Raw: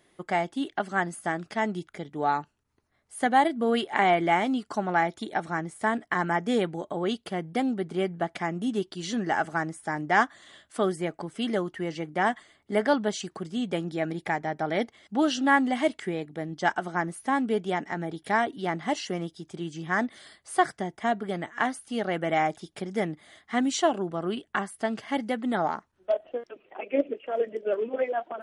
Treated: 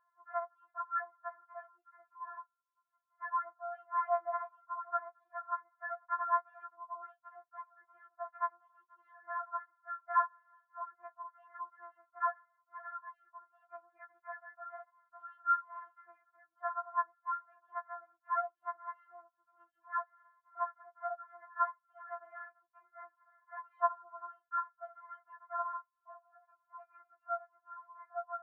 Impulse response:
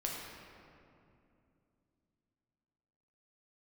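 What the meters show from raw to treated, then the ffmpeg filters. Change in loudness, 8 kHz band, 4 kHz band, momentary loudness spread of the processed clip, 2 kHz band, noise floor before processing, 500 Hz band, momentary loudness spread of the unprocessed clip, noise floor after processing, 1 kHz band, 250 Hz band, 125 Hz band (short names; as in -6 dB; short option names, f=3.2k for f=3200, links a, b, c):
-11.0 dB, under -35 dB, under -40 dB, 21 LU, -17.0 dB, -70 dBFS, -18.0 dB, 9 LU, -85 dBFS, -8.5 dB, under -40 dB, under -40 dB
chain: -af "asuperpass=centerf=1100:order=8:qfactor=1.7,afftfilt=real='re*4*eq(mod(b,16),0)':imag='im*4*eq(mod(b,16),0)':win_size=2048:overlap=0.75,volume=1dB"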